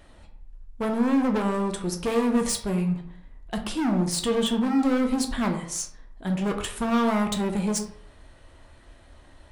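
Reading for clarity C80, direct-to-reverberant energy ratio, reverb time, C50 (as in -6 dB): 11.5 dB, 3.0 dB, 0.65 s, 8.5 dB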